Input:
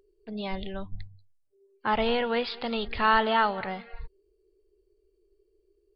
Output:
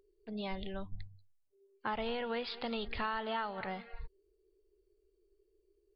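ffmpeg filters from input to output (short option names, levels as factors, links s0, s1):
-af "acompressor=threshold=0.0398:ratio=6,volume=0.562"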